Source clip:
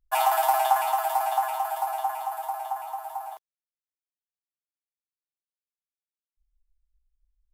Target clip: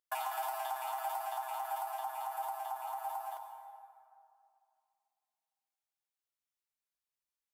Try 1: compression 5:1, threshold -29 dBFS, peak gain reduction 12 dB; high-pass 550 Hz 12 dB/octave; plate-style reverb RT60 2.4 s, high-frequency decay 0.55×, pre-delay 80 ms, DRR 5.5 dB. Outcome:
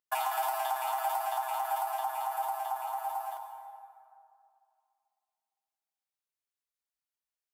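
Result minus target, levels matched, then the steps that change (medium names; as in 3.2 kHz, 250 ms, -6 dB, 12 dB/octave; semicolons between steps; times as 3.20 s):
compression: peak gain reduction -6 dB
change: compression 5:1, threshold -36.5 dBFS, peak gain reduction 18 dB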